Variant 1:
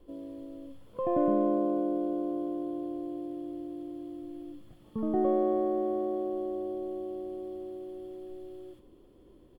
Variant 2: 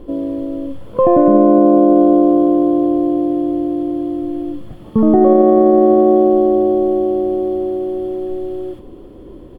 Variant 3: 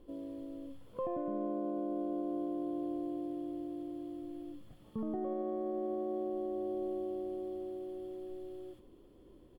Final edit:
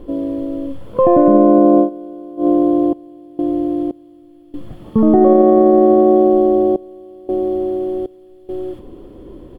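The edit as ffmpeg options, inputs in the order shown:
ffmpeg -i take0.wav -i take1.wav -i take2.wav -filter_complex "[0:a]asplit=3[link_01][link_02][link_03];[2:a]asplit=2[link_04][link_05];[1:a]asplit=6[link_06][link_07][link_08][link_09][link_10][link_11];[link_06]atrim=end=1.9[link_12];[link_01]atrim=start=1.8:end=2.47[link_13];[link_07]atrim=start=2.37:end=2.932[link_14];[link_04]atrim=start=2.928:end=3.392[link_15];[link_08]atrim=start=3.388:end=3.912[link_16];[link_05]atrim=start=3.908:end=4.542[link_17];[link_09]atrim=start=4.538:end=6.762[link_18];[link_02]atrim=start=6.758:end=7.292[link_19];[link_10]atrim=start=7.288:end=8.062[link_20];[link_03]atrim=start=8.058:end=8.492[link_21];[link_11]atrim=start=8.488[link_22];[link_12][link_13]acrossfade=duration=0.1:curve1=tri:curve2=tri[link_23];[link_23][link_14]acrossfade=duration=0.1:curve1=tri:curve2=tri[link_24];[link_24][link_15]acrossfade=duration=0.004:curve1=hsin:curve2=hsin[link_25];[link_25][link_16]acrossfade=duration=0.004:curve1=hsin:curve2=hsin[link_26];[link_26][link_17]acrossfade=duration=0.004:curve1=hsin:curve2=hsin[link_27];[link_27][link_18]acrossfade=duration=0.004:curve1=hsin:curve2=hsin[link_28];[link_28][link_19]acrossfade=duration=0.004:curve1=hsin:curve2=hsin[link_29];[link_29][link_20]acrossfade=duration=0.004:curve1=hsin:curve2=hsin[link_30];[link_30][link_21]acrossfade=duration=0.004:curve1=hsin:curve2=hsin[link_31];[link_31][link_22]acrossfade=duration=0.004:curve1=hsin:curve2=hsin" out.wav

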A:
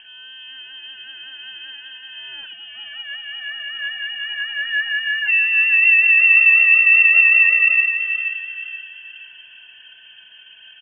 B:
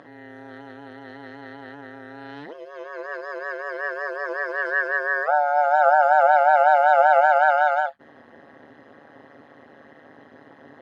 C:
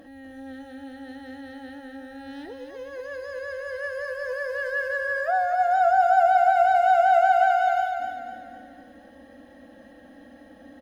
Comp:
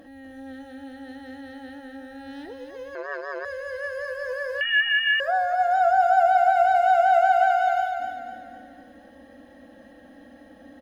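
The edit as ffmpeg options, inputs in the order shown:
ffmpeg -i take0.wav -i take1.wav -i take2.wav -filter_complex "[2:a]asplit=3[link_01][link_02][link_03];[link_01]atrim=end=2.952[link_04];[1:a]atrim=start=2.948:end=3.452[link_05];[link_02]atrim=start=3.448:end=4.612[link_06];[0:a]atrim=start=4.608:end=5.202[link_07];[link_03]atrim=start=5.198[link_08];[link_04][link_05]acrossfade=duration=0.004:curve1=hsin:curve2=hsin[link_09];[link_09][link_06]acrossfade=duration=0.004:curve1=hsin:curve2=hsin[link_10];[link_10][link_07]acrossfade=duration=0.004:curve1=hsin:curve2=hsin[link_11];[link_11][link_08]acrossfade=duration=0.004:curve1=hsin:curve2=hsin" out.wav

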